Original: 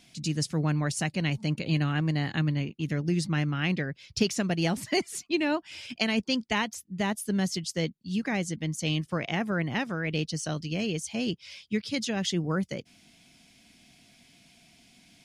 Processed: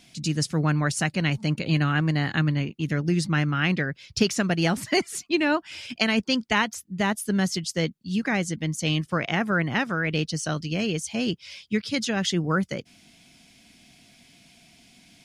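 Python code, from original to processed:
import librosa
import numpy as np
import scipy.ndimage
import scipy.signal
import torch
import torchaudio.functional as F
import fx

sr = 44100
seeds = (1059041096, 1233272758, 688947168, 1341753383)

y = fx.dynamic_eq(x, sr, hz=1400.0, q=1.9, threshold_db=-48.0, ratio=4.0, max_db=6)
y = y * 10.0 ** (3.5 / 20.0)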